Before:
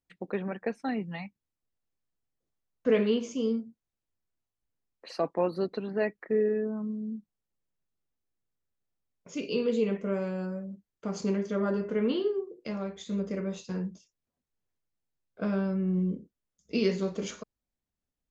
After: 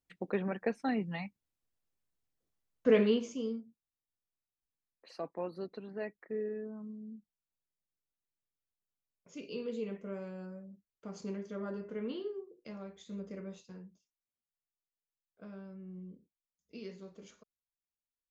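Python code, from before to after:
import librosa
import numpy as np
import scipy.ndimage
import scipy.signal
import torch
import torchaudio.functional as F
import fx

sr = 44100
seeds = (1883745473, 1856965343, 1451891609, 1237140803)

y = fx.gain(x, sr, db=fx.line((3.05, -1.0), (3.65, -11.0), (13.51, -11.0), (13.91, -19.0)))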